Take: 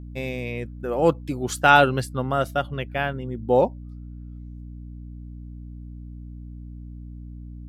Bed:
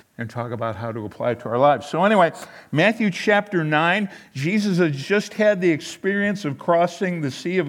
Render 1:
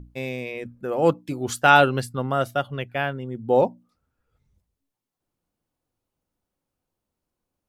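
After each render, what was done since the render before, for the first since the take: notches 60/120/180/240/300 Hz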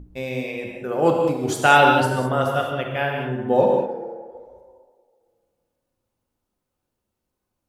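tape echo 65 ms, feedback 85%, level -11 dB, low-pass 2900 Hz; non-linear reverb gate 0.23 s flat, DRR 1 dB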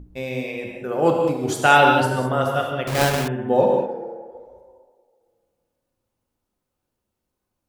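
2.87–3.28 half-waves squared off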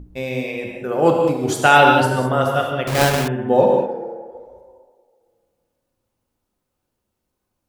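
gain +3 dB; limiter -1 dBFS, peak gain reduction 2.5 dB

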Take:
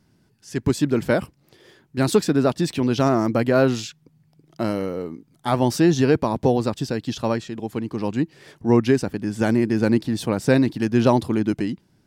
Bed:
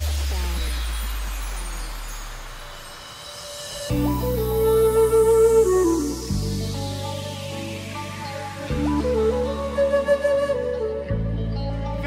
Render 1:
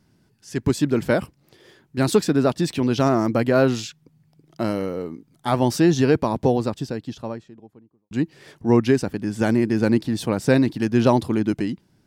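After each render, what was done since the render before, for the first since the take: 6.27–8.11 studio fade out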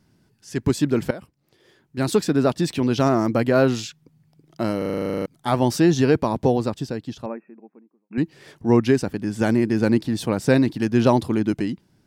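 1.11–2.44 fade in, from -17 dB; 4.78 stutter in place 0.04 s, 12 plays; 7.26–8.18 brick-wall FIR band-pass 180–2700 Hz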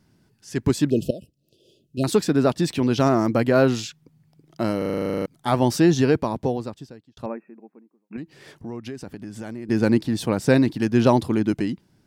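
0.9–2.04 brick-wall FIR band-stop 690–2500 Hz; 5.94–7.17 fade out; 8.16–9.69 compressor 4:1, threshold -33 dBFS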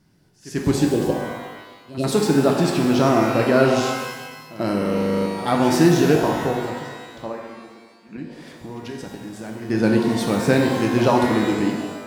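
pre-echo 91 ms -16 dB; shimmer reverb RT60 1.2 s, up +12 st, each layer -8 dB, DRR 1 dB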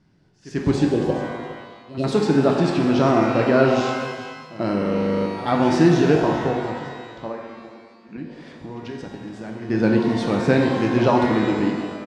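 air absorption 110 m; echo 0.412 s -16 dB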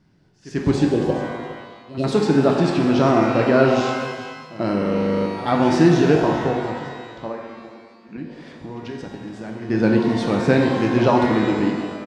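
gain +1 dB

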